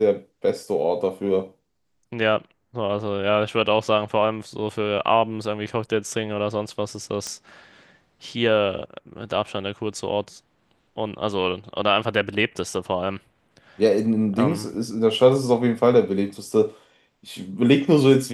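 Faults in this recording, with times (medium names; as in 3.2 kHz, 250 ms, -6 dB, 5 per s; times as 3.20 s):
7.27 s: pop -16 dBFS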